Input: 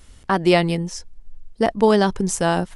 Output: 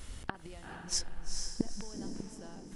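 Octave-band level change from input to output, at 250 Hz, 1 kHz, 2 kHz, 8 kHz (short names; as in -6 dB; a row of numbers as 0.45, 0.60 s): -20.0, -26.0, -21.0, -8.0 dB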